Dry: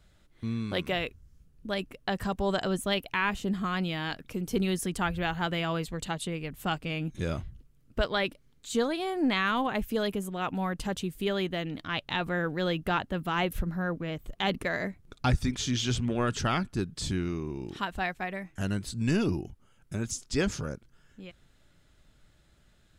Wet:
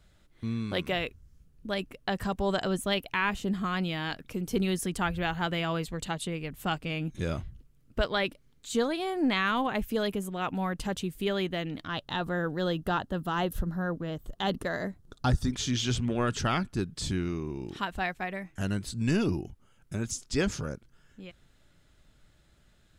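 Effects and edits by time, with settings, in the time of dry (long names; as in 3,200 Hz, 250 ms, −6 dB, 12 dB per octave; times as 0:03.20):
0:11.88–0:15.53: parametric band 2,300 Hz −14 dB 0.39 octaves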